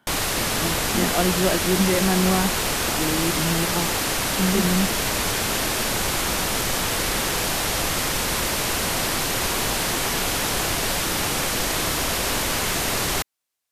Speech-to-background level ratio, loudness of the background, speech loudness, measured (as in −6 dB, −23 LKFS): −3.0 dB, −22.0 LKFS, −25.0 LKFS